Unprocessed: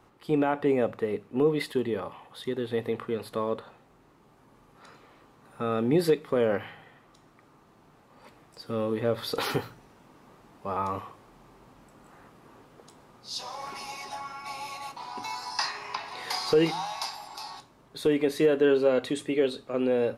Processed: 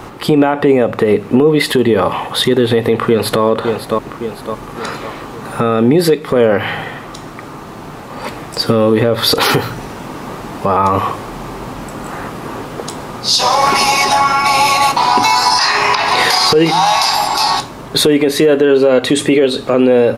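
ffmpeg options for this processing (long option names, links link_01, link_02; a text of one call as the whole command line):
ffmpeg -i in.wav -filter_complex "[0:a]asplit=2[link_01][link_02];[link_02]afade=type=in:start_time=2.94:duration=0.01,afade=type=out:start_time=3.42:duration=0.01,aecho=0:1:560|1120|1680|2240:0.223872|0.100742|0.0453341|0.0204003[link_03];[link_01][link_03]amix=inputs=2:normalize=0,acompressor=threshold=-33dB:ratio=12,alimiter=level_in=29.5dB:limit=-1dB:release=50:level=0:latency=1,volume=-1dB" out.wav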